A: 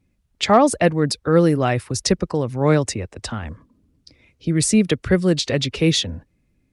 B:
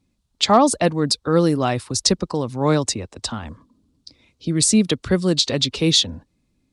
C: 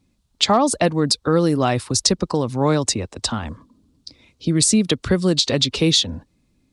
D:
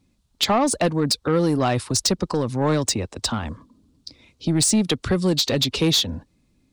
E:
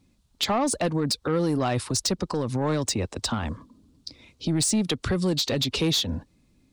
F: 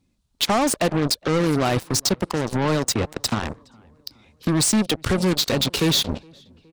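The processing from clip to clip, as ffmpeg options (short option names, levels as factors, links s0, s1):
-af "equalizer=f=250:t=o:w=1:g=5,equalizer=f=1000:t=o:w=1:g=7,equalizer=f=2000:t=o:w=1:g=-4,equalizer=f=4000:t=o:w=1:g=10,equalizer=f=8000:t=o:w=1:g=7,volume=0.596"
-af "acompressor=threshold=0.126:ratio=3,volume=1.58"
-af "asoftclip=type=tanh:threshold=0.237"
-af "alimiter=limit=0.112:level=0:latency=1:release=105,volume=1.12"
-filter_complex "[0:a]asplit=2[s0][s1];[s1]adelay=416,lowpass=f=3900:p=1,volume=0.126,asplit=2[s2][s3];[s3]adelay=416,lowpass=f=3900:p=1,volume=0.49,asplit=2[s4][s5];[s5]adelay=416,lowpass=f=3900:p=1,volume=0.49,asplit=2[s6][s7];[s7]adelay=416,lowpass=f=3900:p=1,volume=0.49[s8];[s0][s2][s4][s6][s8]amix=inputs=5:normalize=0,aeval=exprs='0.15*(cos(1*acos(clip(val(0)/0.15,-1,1)))-cos(1*PI/2))+0.0299*(cos(7*acos(clip(val(0)/0.15,-1,1)))-cos(7*PI/2))':c=same,volume=1.5"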